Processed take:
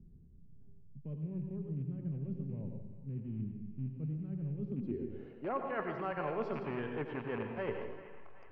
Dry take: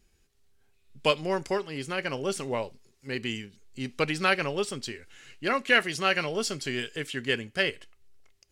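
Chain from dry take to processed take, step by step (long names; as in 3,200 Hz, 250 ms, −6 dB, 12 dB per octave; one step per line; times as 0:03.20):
loose part that buzzes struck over −38 dBFS, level −19 dBFS
low-pass filter 4,900 Hz
reversed playback
downward compressor 12 to 1, threshold −36 dBFS, peak gain reduction 20 dB
reversed playback
low-pass filter sweep 160 Hz → 970 Hz, 0:04.56–0:05.60
delay with a band-pass on its return 381 ms, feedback 31%, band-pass 1,500 Hz, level −16 dB
on a send at −4.5 dB: convolution reverb RT60 0.80 s, pre-delay 81 ms
on the sum: multiband upward and downward compressor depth 40%
level +3 dB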